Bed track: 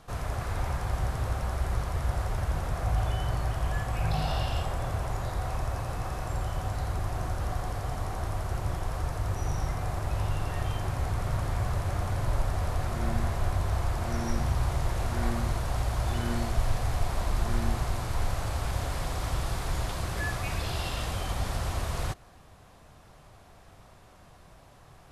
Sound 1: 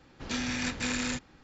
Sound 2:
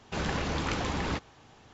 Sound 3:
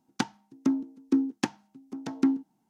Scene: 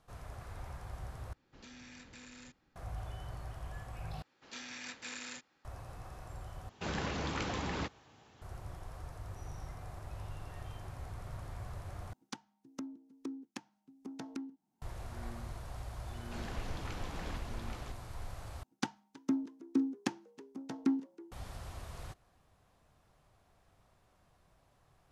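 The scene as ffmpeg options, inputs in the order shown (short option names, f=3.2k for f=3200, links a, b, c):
-filter_complex "[1:a]asplit=2[a][b];[2:a]asplit=2[c][d];[3:a]asplit=2[e][f];[0:a]volume=-15dB[g];[a]acompressor=threshold=-33dB:ratio=6:attack=3.2:release=140:knee=1:detection=peak[h];[b]highpass=f=650:p=1[i];[c]highpass=48[j];[e]acompressor=threshold=-32dB:ratio=5:attack=2:release=803:knee=1:detection=peak[k];[d]aecho=1:1:824:0.631[l];[f]asplit=5[m][n][o][p][q];[n]adelay=321,afreqshift=68,volume=-22dB[r];[o]adelay=642,afreqshift=136,volume=-26.9dB[s];[p]adelay=963,afreqshift=204,volume=-31.8dB[t];[q]adelay=1284,afreqshift=272,volume=-36.6dB[u];[m][r][s][t][u]amix=inputs=5:normalize=0[v];[g]asplit=6[w][x][y][z][aa][ab];[w]atrim=end=1.334[ac];[h]atrim=end=1.43,asetpts=PTS-STARTPTS,volume=-16dB[ad];[x]atrim=start=2.756:end=4.224[ae];[i]atrim=end=1.43,asetpts=PTS-STARTPTS,volume=-11dB[af];[y]atrim=start=5.646:end=6.694[ag];[j]atrim=end=1.73,asetpts=PTS-STARTPTS,volume=-5.5dB[ah];[z]atrim=start=8.416:end=12.134[ai];[k]atrim=end=2.69,asetpts=PTS-STARTPTS,volume=-5dB[aj];[aa]atrim=start=14.816:end=18.634[ak];[v]atrim=end=2.69,asetpts=PTS-STARTPTS,volume=-7dB[al];[ab]atrim=start=21.316[am];[l]atrim=end=1.73,asetpts=PTS-STARTPTS,volume=-14dB,afade=t=in:d=0.004:c=hsin,afade=t=out:st=1.726:d=0.004:c=hsin,adelay=16190[an];[ac][ad]acrossfade=d=0.004:c1=hsin:c2=hsin[ao];[ao][ae]acrossfade=d=0.004:c1=hsin:c2=hsin[ap];[ap][af]acrossfade=d=0.004:c1=hsin:c2=hsin[aq];[aq][ag]acrossfade=d=0.004:c1=hsin:c2=hsin[ar];[ar][ah]acrossfade=d=0.004:c1=hsin:c2=hsin[as];[as][ai]acrossfade=d=0.004:c1=hsin:c2=hsin[at];[at][aj]acrossfade=d=0.004:c1=hsin:c2=hsin[au];[au][ak]acrossfade=d=0.004:c1=hsin:c2=hsin[av];[av][al]acrossfade=d=0.004:c1=hsin:c2=hsin[aw];[aw][am]acrossfade=d=0.004:c1=hsin:c2=hsin[ax];[ax][an]amix=inputs=2:normalize=0"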